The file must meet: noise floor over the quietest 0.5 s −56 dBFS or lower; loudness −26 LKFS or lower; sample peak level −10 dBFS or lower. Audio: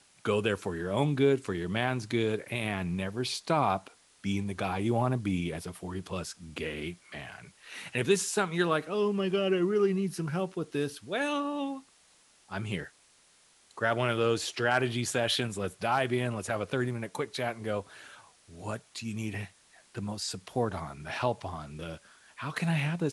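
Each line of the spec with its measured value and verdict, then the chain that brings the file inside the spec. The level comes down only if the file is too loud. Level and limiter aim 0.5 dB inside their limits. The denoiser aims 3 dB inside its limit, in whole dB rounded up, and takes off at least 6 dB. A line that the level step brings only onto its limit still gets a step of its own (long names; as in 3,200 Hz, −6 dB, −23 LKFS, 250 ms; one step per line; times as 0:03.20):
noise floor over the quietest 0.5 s −63 dBFS: in spec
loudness −31.0 LKFS: in spec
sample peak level −12.5 dBFS: in spec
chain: no processing needed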